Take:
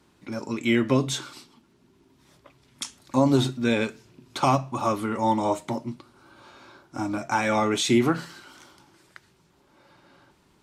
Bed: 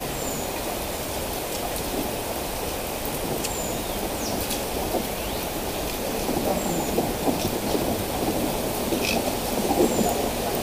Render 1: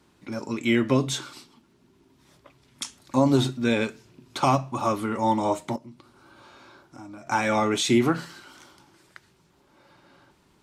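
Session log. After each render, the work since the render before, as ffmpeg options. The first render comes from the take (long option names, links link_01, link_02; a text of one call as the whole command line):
ffmpeg -i in.wav -filter_complex "[0:a]asettb=1/sr,asplit=3[link_01][link_02][link_03];[link_01]atrim=end=5.764[link_04];[link_02]atrim=start=5.76:end=7.27,asetpts=PTS-STARTPTS,afade=type=in:duration=0.004:curve=qsin,afade=type=out:start_time=1.506:duration=0.004:curve=qsin,acompressor=threshold=-46dB:ratio=2.5:attack=3.2:release=140:knee=1:detection=peak[link_05];[link_03]atrim=start=7.266[link_06];[link_04][link_05]acrossfade=duration=0.004:curve1=hsin:curve2=qsin[link_07];[link_07][link_06]acrossfade=duration=0.004:curve1=qsin:curve2=hsin" out.wav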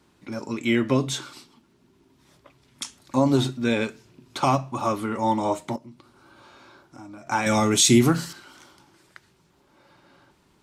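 ffmpeg -i in.wav -filter_complex "[0:a]asettb=1/sr,asplit=3[link_01][link_02][link_03];[link_01]atrim=end=7.464[link_04];[link_02]atrim=start=7.46:end=8.33,asetpts=PTS-STARTPTS,afade=type=in:duration=0.004:curve=qsin,afade=type=out:start_time=0.866:duration=0.004:curve=qsin,bass=frequency=250:gain=8,treble=frequency=4000:gain=13[link_05];[link_03]atrim=start=8.326[link_06];[link_04][link_05]acrossfade=duration=0.004:curve1=hsin:curve2=qsin[link_07];[link_07][link_06]acrossfade=duration=0.004:curve1=qsin:curve2=hsin" out.wav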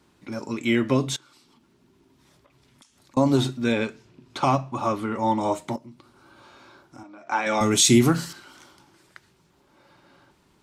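ffmpeg -i in.wav -filter_complex "[0:a]asettb=1/sr,asplit=3[link_01][link_02][link_03];[link_01]atrim=end=1.164[link_04];[link_02]atrim=start=1.16:end=3.17,asetpts=PTS-STARTPTS,afade=type=in:duration=0.004:curve=qsin,afade=type=out:start_time=2.006:duration=0.004:curve=qsin,acompressor=threshold=-54dB:ratio=5:attack=3.2:release=140:knee=1:detection=peak[link_05];[link_03]atrim=start=3.166[link_06];[link_04][link_05]acrossfade=duration=0.004:curve1=hsin:curve2=qsin[link_07];[link_07][link_06]acrossfade=duration=0.004:curve1=qsin:curve2=hsin,asettb=1/sr,asplit=3[link_08][link_09][link_10];[link_08]atrim=end=3.724[link_11];[link_09]atrim=start=3.72:end=5.41,asetpts=PTS-STARTPTS,afade=type=in:duration=0.004:curve=qsin,afade=type=out:start_time=1.686:duration=0.004:curve=qsin,highshelf=frequency=8500:gain=-12[link_12];[link_10]atrim=start=5.406[link_13];[link_11][link_12]acrossfade=duration=0.004:curve1=hsin:curve2=qsin[link_14];[link_14][link_13]acrossfade=duration=0.004:curve1=qsin:curve2=hsin,asettb=1/sr,asplit=3[link_15][link_16][link_17];[link_15]atrim=end=7.034[link_18];[link_16]atrim=start=7.03:end=7.61,asetpts=PTS-STARTPTS,afade=type=in:duration=0.004:curve=qsin,afade=type=out:start_time=0.576:duration=0.004:curve=qsin,highpass=340,lowpass=3900[link_19];[link_17]atrim=start=7.606[link_20];[link_18][link_19]acrossfade=duration=0.004:curve1=hsin:curve2=qsin[link_21];[link_21][link_20]acrossfade=duration=0.004:curve1=qsin:curve2=hsin" out.wav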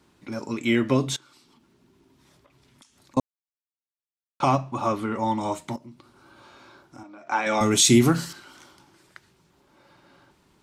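ffmpeg -i in.wav -filter_complex "[0:a]asettb=1/sr,asplit=3[link_01][link_02][link_03];[link_01]atrim=end=5.244[link_04];[link_02]atrim=start=5.24:end=5.8,asetpts=PTS-STARTPTS,afade=type=in:duration=0.004:curve=qsin,afade=type=out:start_time=0.556:duration=0.004:curve=qsin,equalizer=frequency=500:width_type=o:width=1.6:gain=-5.5[link_05];[link_03]atrim=start=5.796[link_06];[link_04][link_05]acrossfade=duration=0.004:curve1=hsin:curve2=qsin[link_07];[link_07][link_06]acrossfade=duration=0.004:curve1=qsin:curve2=hsin,asplit=3[link_08][link_09][link_10];[link_08]atrim=end=3.2,asetpts=PTS-STARTPTS,afade=type=out:start_time=3.196:duration=0.004:curve=hsin[link_11];[link_09]atrim=start=3.2:end=4.4,asetpts=PTS-STARTPTS,volume=0[link_12];[link_10]atrim=start=4.4,asetpts=PTS-STARTPTS,afade=type=in:duration=0.004:curve=hsin[link_13];[link_11][link_12][link_13]concat=n=3:v=0:a=1" out.wav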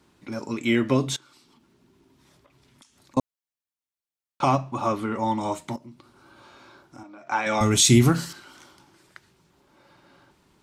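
ffmpeg -i in.wav -filter_complex "[0:a]asplit=3[link_01][link_02][link_03];[link_01]afade=type=out:start_time=7.21:duration=0.02[link_04];[link_02]asubboost=boost=2.5:cutoff=150,afade=type=in:start_time=7.21:duration=0.02,afade=type=out:start_time=8.1:duration=0.02[link_05];[link_03]afade=type=in:start_time=8.1:duration=0.02[link_06];[link_04][link_05][link_06]amix=inputs=3:normalize=0" out.wav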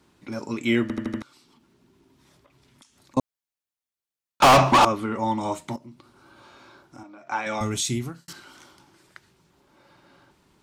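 ffmpeg -i in.wav -filter_complex "[0:a]asettb=1/sr,asplit=3[link_01][link_02][link_03];[link_01]atrim=end=4.424[link_04];[link_02]atrim=start=4.42:end=4.85,asetpts=PTS-STARTPTS,afade=type=in:duration=0.004:curve=qsin,afade=type=out:start_time=0.426:duration=0.004:curve=qsin,asplit=2[link_05][link_06];[link_06]highpass=frequency=720:poles=1,volume=35dB,asoftclip=type=tanh:threshold=-7dB[link_07];[link_05][link_07]amix=inputs=2:normalize=0,lowpass=frequency=6100:poles=1,volume=-6dB[link_08];[link_03]atrim=start=4.846[link_09];[link_04][link_08]acrossfade=duration=0.004:curve1=hsin:curve2=qsin[link_10];[link_10][link_09]acrossfade=duration=0.004:curve1=qsin:curve2=hsin,asplit=7[link_11][link_12][link_13][link_14][link_15][link_16][link_17];[link_11]atrim=end=0.902[link_18];[link_12]atrim=start=0.818:end=0.902[link_19];[link_13]atrim=start=0.818:end=0.902[link_20];[link_14]atrim=start=0.818:end=0.902[link_21];[link_15]atrim=start=0.818:end=0.902[link_22];[link_16]atrim=start=1.218:end=8.28,asetpts=PTS-STARTPTS,afade=type=out:start_time=5.812:duration=1.25[link_23];[link_17]atrim=start=8.28,asetpts=PTS-STARTPTS,afade=type=in:duration=0.004:curve=hsin[link_24];[link_18][link_19]acrossfade=duration=0.004:curve1=hsin:curve2=hsin[link_25];[link_25][link_20]acrossfade=duration=0.004:curve1=hsin:curve2=hsin[link_26];[link_26][link_21]acrossfade=duration=0.004:curve1=hsin:curve2=hsin[link_27];[link_27][link_22]acrossfade=duration=0.004:curve1=hsin:curve2=hsin[link_28];[link_23][link_24]concat=n=2:v=0:a=1[link_29];[link_28][link_29]acrossfade=duration=0.004:curve1=hsin:curve2=hsin" out.wav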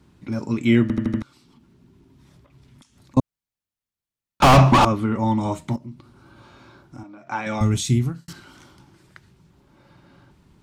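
ffmpeg -i in.wav -af "bass=frequency=250:gain=12,treble=frequency=4000:gain=-2" out.wav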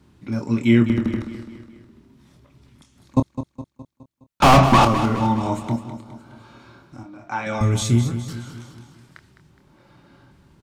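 ffmpeg -i in.wav -filter_complex "[0:a]asplit=2[link_01][link_02];[link_02]adelay=26,volume=-8.5dB[link_03];[link_01][link_03]amix=inputs=2:normalize=0,aecho=1:1:208|416|624|832|1040:0.282|0.141|0.0705|0.0352|0.0176" out.wav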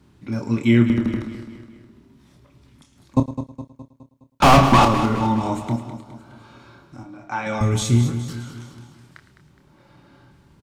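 ffmpeg -i in.wav -filter_complex "[0:a]asplit=2[link_01][link_02];[link_02]adelay=33,volume=-13.5dB[link_03];[link_01][link_03]amix=inputs=2:normalize=0,aecho=1:1:110:0.178" out.wav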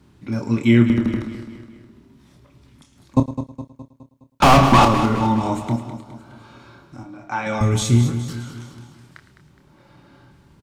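ffmpeg -i in.wav -af "volume=1.5dB,alimiter=limit=-2dB:level=0:latency=1" out.wav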